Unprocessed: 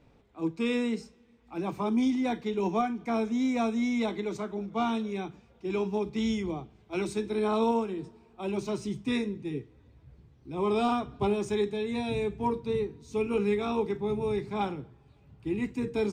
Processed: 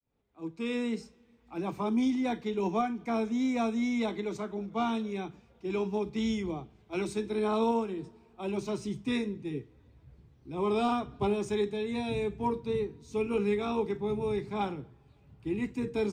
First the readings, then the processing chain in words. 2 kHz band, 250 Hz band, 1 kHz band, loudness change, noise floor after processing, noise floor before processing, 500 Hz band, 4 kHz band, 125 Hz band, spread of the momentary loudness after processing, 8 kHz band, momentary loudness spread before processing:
-1.5 dB, -1.5 dB, -1.5 dB, -1.5 dB, -62 dBFS, -61 dBFS, -1.5 dB, -1.5 dB, -1.5 dB, 10 LU, -1.5 dB, 9 LU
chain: opening faded in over 0.97 s; gain -1.5 dB

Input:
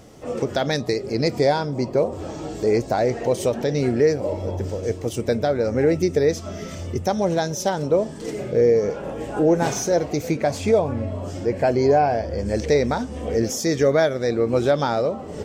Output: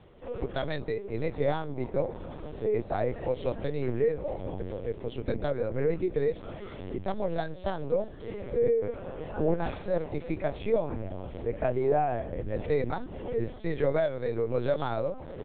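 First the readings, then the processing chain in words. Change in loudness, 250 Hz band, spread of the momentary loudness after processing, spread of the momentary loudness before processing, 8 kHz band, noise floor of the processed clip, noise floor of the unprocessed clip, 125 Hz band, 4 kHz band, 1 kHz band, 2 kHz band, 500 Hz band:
-9.5 dB, -11.0 dB, 9 LU, 9 LU, under -40 dB, -44 dBFS, -34 dBFS, -8.5 dB, -15.5 dB, -9.5 dB, -10.5 dB, -9.0 dB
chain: on a send: feedback echo 0.621 s, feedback 56%, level -23 dB; on the sum: LPC vocoder at 8 kHz pitch kept; gain -8.5 dB

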